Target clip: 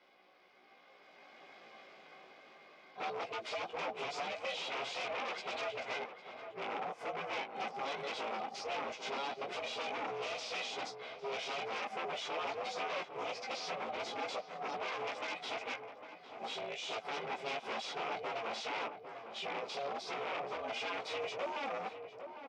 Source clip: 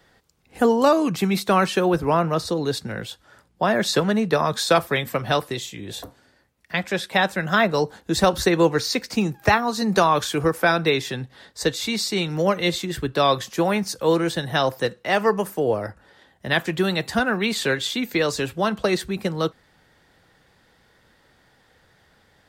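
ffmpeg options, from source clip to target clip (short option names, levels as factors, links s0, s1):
-filter_complex "[0:a]areverse,aecho=1:1:2.2:0.5,dynaudnorm=f=160:g=17:m=5.96,alimiter=limit=0.299:level=0:latency=1:release=65,acompressor=threshold=0.0562:ratio=4,flanger=delay=7.3:depth=1.5:regen=-37:speed=1.2:shape=triangular,aeval=exprs='val(0)*sin(2*PI*280*n/s)':c=same,flanger=delay=16:depth=2.5:speed=0.2,aeval=exprs='0.0178*(abs(mod(val(0)/0.0178+3,4)-2)-1)':c=same,highpass=400,equalizer=f=530:t=q:w=4:g=5,equalizer=f=810:t=q:w=4:g=3,equalizer=f=1700:t=q:w=4:g=-7,equalizer=f=2400:t=q:w=4:g=6,equalizer=f=4200:t=q:w=4:g=-6,lowpass=f=5200:w=0.5412,lowpass=f=5200:w=1.3066,asplit=2[s0][s1];[s1]adelay=804,lowpass=f=1300:p=1,volume=0.398,asplit=2[s2][s3];[s3]adelay=804,lowpass=f=1300:p=1,volume=0.44,asplit=2[s4][s5];[s5]adelay=804,lowpass=f=1300:p=1,volume=0.44,asplit=2[s6][s7];[s7]adelay=804,lowpass=f=1300:p=1,volume=0.44,asplit=2[s8][s9];[s9]adelay=804,lowpass=f=1300:p=1,volume=0.44[s10];[s2][s4][s6][s8][s10]amix=inputs=5:normalize=0[s11];[s0][s11]amix=inputs=2:normalize=0,volume=1.26" -ar 48000 -c:a sbc -b:a 128k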